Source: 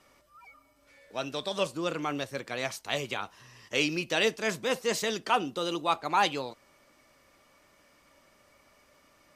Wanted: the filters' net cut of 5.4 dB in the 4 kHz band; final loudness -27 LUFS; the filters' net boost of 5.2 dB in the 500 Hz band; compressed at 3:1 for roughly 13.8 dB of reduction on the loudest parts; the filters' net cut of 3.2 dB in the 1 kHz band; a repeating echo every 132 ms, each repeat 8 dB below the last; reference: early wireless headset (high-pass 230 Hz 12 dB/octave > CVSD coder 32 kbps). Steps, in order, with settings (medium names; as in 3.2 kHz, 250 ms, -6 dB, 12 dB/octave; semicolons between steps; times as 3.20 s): peaking EQ 500 Hz +8 dB; peaking EQ 1 kHz -7 dB; peaking EQ 4 kHz -7 dB; compression 3:1, threshold -38 dBFS; high-pass 230 Hz 12 dB/octave; feedback delay 132 ms, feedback 40%, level -8 dB; CVSD coder 32 kbps; trim +12.5 dB